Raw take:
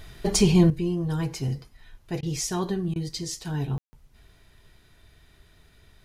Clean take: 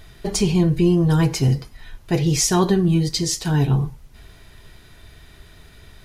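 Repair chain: room tone fill 3.78–3.93; interpolate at 2.21/2.94, 17 ms; gain correction +10.5 dB, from 0.7

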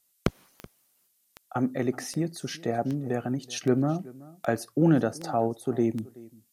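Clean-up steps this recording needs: de-click; expander -62 dBFS, range -21 dB; inverse comb 0.378 s -21.5 dB

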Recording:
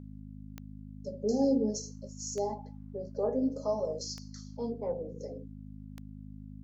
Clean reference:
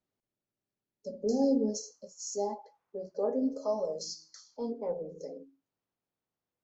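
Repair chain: de-click; de-hum 51.7 Hz, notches 5

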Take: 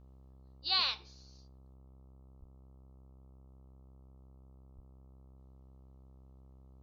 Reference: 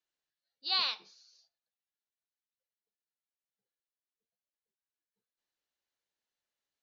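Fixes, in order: de-hum 65.6 Hz, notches 20; 1.74 gain correction +4 dB; 2.39–2.51 HPF 140 Hz 24 dB/oct; 4.75–4.87 HPF 140 Hz 24 dB/oct

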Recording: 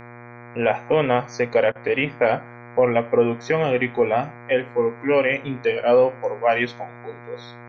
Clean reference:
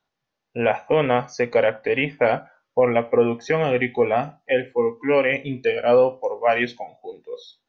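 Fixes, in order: de-hum 120 Hz, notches 20; interpolate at 1.72, 34 ms

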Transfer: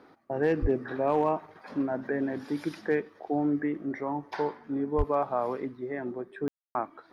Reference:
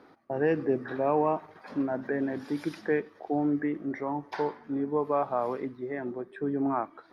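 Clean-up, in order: clip repair -16.5 dBFS; de-plosive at 0.61/4.97; room tone fill 6.48–6.75

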